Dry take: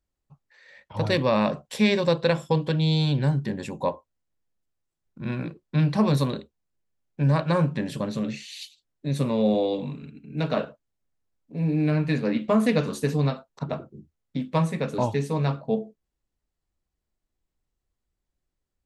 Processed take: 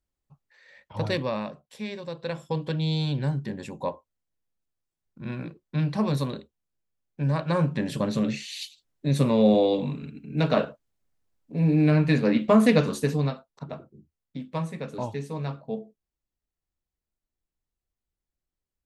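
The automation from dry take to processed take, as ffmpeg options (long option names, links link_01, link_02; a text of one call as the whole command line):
ffmpeg -i in.wav -af "volume=14.5dB,afade=type=out:start_time=1.03:duration=0.5:silence=0.266073,afade=type=in:start_time=2.12:duration=0.59:silence=0.316228,afade=type=in:start_time=7.39:duration=0.75:silence=0.446684,afade=type=out:start_time=12.74:duration=0.75:silence=0.316228" out.wav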